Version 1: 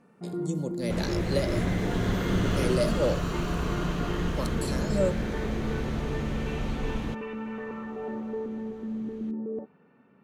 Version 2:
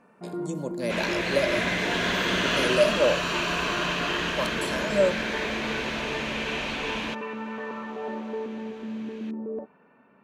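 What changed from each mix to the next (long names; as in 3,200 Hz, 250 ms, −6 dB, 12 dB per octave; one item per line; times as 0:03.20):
second sound: add meter weighting curve D
master: add thirty-one-band graphic EQ 100 Hz −12 dB, 160 Hz −5 dB, 630 Hz +8 dB, 1,000 Hz +9 dB, 1,600 Hz +7 dB, 2,500 Hz +6 dB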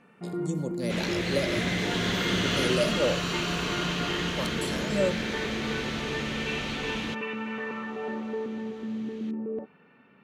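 first sound: add parametric band 2,900 Hz +11.5 dB 2.1 octaves
master: add thirty-one-band graphic EQ 100 Hz +12 dB, 160 Hz +5 dB, 630 Hz −8 dB, 1,000 Hz −9 dB, 1,600 Hz −7 dB, 2,500 Hz −6 dB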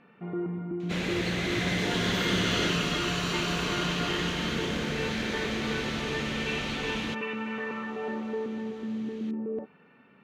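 speech: muted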